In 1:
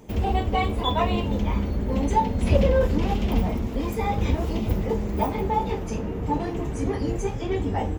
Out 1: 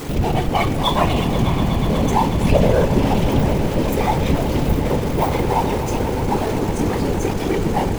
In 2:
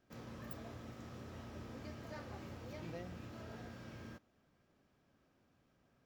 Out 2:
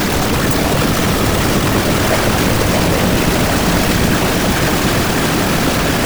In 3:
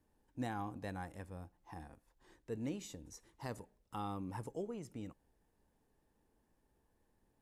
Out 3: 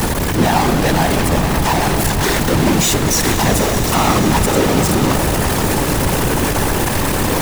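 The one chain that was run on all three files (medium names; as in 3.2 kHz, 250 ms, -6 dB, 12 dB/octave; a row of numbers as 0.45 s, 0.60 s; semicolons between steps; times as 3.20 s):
jump at every zero crossing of -27 dBFS; whisper effect; echo with a slow build-up 122 ms, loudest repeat 5, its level -15 dB; peak normalisation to -1.5 dBFS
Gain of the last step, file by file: +3.0 dB, +17.5 dB, +16.5 dB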